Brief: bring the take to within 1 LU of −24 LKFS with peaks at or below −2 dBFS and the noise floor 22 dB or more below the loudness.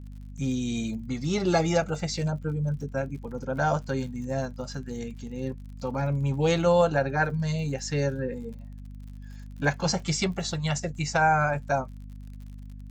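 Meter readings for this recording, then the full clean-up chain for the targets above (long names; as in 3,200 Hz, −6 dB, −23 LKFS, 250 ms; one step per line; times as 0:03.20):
crackle rate 50 per second; mains hum 50 Hz; hum harmonics up to 250 Hz; level of the hum −39 dBFS; integrated loudness −27.5 LKFS; sample peak −11.5 dBFS; target loudness −24.0 LKFS
→ click removal
mains-hum notches 50/100/150/200/250 Hz
level +3.5 dB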